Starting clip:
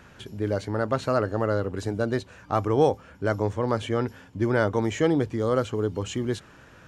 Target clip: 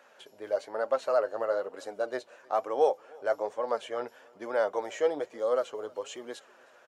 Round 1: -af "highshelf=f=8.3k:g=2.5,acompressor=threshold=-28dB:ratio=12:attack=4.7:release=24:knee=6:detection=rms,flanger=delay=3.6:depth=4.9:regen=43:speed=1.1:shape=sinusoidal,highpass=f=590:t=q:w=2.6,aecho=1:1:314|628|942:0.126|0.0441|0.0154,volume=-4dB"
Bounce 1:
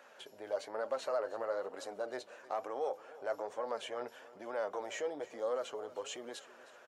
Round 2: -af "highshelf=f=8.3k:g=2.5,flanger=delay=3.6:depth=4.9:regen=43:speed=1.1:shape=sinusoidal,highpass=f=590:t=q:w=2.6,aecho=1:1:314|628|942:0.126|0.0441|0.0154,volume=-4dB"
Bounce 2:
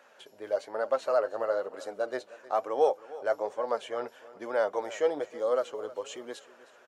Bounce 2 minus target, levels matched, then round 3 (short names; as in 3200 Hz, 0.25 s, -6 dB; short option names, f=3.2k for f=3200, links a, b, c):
echo-to-direct +8 dB
-af "highshelf=f=8.3k:g=2.5,flanger=delay=3.6:depth=4.9:regen=43:speed=1.1:shape=sinusoidal,highpass=f=590:t=q:w=2.6,aecho=1:1:314|628:0.0501|0.0175,volume=-4dB"